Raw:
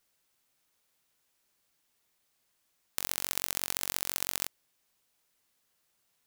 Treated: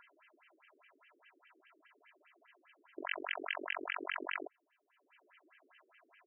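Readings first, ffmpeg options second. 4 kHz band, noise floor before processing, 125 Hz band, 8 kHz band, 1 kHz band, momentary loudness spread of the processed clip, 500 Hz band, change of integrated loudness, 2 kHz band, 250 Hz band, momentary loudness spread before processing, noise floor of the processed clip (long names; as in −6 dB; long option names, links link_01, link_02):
−8.5 dB, −76 dBFS, below −30 dB, below −40 dB, +2.0 dB, 8 LU, +3.0 dB, −7.5 dB, +3.0 dB, +1.5 dB, 6 LU, −78 dBFS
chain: -af "acompressor=mode=upward:threshold=-51dB:ratio=2.5,aecho=1:1:3:0.82,asoftclip=type=tanh:threshold=-4dB,afftfilt=real='re*between(b*sr/1024,350*pow(2300/350,0.5+0.5*sin(2*PI*4.9*pts/sr))/1.41,350*pow(2300/350,0.5+0.5*sin(2*PI*4.9*pts/sr))*1.41)':imag='im*between(b*sr/1024,350*pow(2300/350,0.5+0.5*sin(2*PI*4.9*pts/sr))/1.41,350*pow(2300/350,0.5+0.5*sin(2*PI*4.9*pts/sr))*1.41)':win_size=1024:overlap=0.75,volume=9dB"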